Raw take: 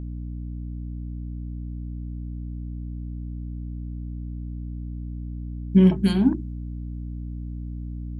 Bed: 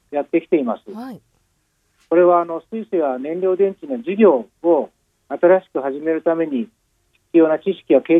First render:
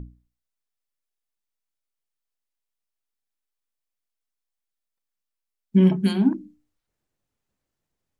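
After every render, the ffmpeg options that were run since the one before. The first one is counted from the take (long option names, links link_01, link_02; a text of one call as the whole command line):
ffmpeg -i in.wav -af "bandreject=frequency=60:width_type=h:width=6,bandreject=frequency=120:width_type=h:width=6,bandreject=frequency=180:width_type=h:width=6,bandreject=frequency=240:width_type=h:width=6,bandreject=frequency=300:width_type=h:width=6" out.wav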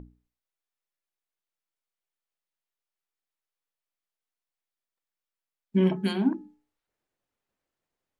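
ffmpeg -i in.wav -af "bass=frequency=250:gain=-10,treble=frequency=4000:gain=-6,bandreject=frequency=426.2:width_type=h:width=4,bandreject=frequency=852.4:width_type=h:width=4,bandreject=frequency=1278.6:width_type=h:width=4,bandreject=frequency=1704.8:width_type=h:width=4" out.wav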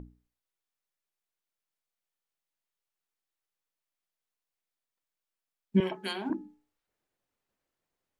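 ffmpeg -i in.wav -filter_complex "[0:a]asettb=1/sr,asplit=3[link_01][link_02][link_03];[link_01]atrim=end=5.804[link_04];[link_02]atrim=start=5.8:end=6.3,asetpts=PTS-STARTPTS,afade=type=in:duration=0.004:curve=qsin,afade=type=out:start_time=0.496:duration=0.004:curve=qsin,highpass=540[link_05];[link_03]atrim=start=6.296[link_06];[link_04][link_05]acrossfade=duration=0.004:curve1=hsin:curve2=qsin[link_07];[link_07][link_06]acrossfade=duration=0.004:curve1=qsin:curve2=hsin" out.wav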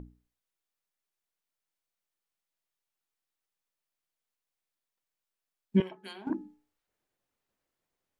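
ffmpeg -i in.wav -filter_complex "[0:a]asplit=3[link_01][link_02][link_03];[link_01]atrim=end=5.822[link_04];[link_02]atrim=start=5.818:end=6.272,asetpts=PTS-STARTPTS,volume=-10dB[link_05];[link_03]atrim=start=6.268[link_06];[link_04][link_05]acrossfade=duration=0.004:curve1=hsin:curve2=hsin[link_07];[link_07][link_06]acrossfade=duration=0.004:curve1=hsin:curve2=hsin" out.wav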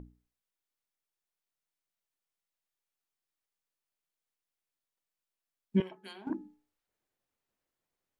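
ffmpeg -i in.wav -af "volume=-3dB" out.wav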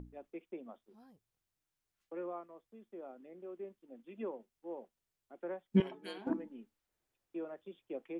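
ffmpeg -i in.wav -i bed.wav -filter_complex "[1:a]volume=-29.5dB[link_01];[0:a][link_01]amix=inputs=2:normalize=0" out.wav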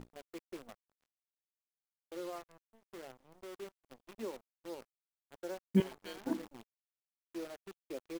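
ffmpeg -i in.wav -af "aresample=16000,aeval=exprs='sgn(val(0))*max(abs(val(0))-0.00158,0)':channel_layout=same,aresample=44100,acrusher=bits=9:dc=4:mix=0:aa=0.000001" out.wav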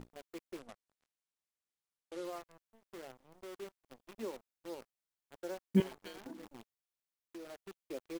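ffmpeg -i in.wav -filter_complex "[0:a]asettb=1/sr,asplit=3[link_01][link_02][link_03];[link_01]atrim=end=0.594[link_04];[link_02]atrim=start=0.59:end=2.25,asetpts=PTS-STARTPTS,afade=type=in:duration=0.004:curve=qsin,afade=type=out:start_time=1.656:duration=0.004:curve=qsin,lowpass=frequency=11000:width=0.5412,lowpass=frequency=11000:width=1.3066[link_05];[link_03]atrim=start=2.246[link_06];[link_04][link_05]acrossfade=duration=0.004:curve1=hsin:curve2=qsin[link_07];[link_07][link_06]acrossfade=duration=0.004:curve1=qsin:curve2=hsin,asettb=1/sr,asplit=3[link_08][link_09][link_10];[link_08]atrim=end=6.074[link_11];[link_09]atrim=start=6.07:end=7.67,asetpts=PTS-STARTPTS,afade=type=in:duration=0.004:curve=qsin,afade=type=out:start_time=1.596:duration=0.004:curve=qsin,acompressor=threshold=-44dB:ratio=6:attack=3.2:release=140:knee=1:detection=peak[link_12];[link_10]atrim=start=7.666[link_13];[link_11][link_12]acrossfade=duration=0.004:curve1=hsin:curve2=qsin[link_14];[link_14][link_13]acrossfade=duration=0.004:curve1=qsin:curve2=hsin" out.wav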